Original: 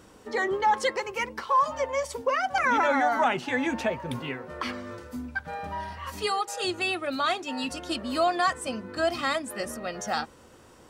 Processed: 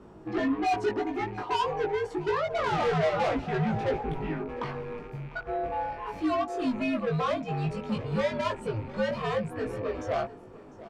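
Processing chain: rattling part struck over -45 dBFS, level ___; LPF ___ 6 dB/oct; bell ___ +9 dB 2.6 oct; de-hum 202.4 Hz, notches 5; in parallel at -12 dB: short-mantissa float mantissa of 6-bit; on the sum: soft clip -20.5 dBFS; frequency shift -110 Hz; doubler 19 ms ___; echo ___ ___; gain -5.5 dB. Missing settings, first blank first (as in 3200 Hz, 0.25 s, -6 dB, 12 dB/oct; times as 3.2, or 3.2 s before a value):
-33 dBFS, 1200 Hz, 550 Hz, -2.5 dB, 0.7 s, -19 dB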